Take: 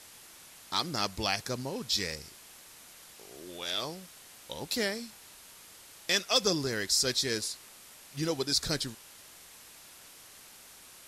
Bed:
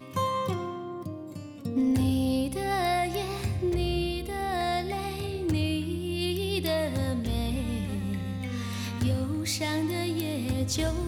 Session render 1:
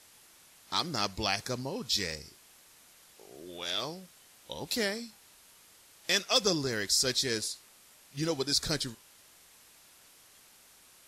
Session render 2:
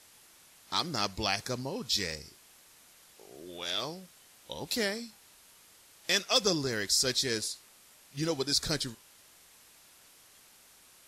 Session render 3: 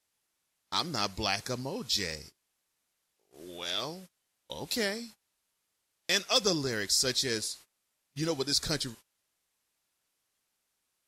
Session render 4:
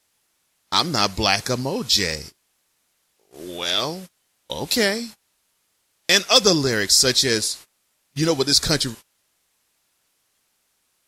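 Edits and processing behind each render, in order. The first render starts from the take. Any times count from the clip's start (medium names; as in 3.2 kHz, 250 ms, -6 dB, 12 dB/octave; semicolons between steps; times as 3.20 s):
noise print and reduce 6 dB
no audible change
gate -48 dBFS, range -22 dB
trim +11.5 dB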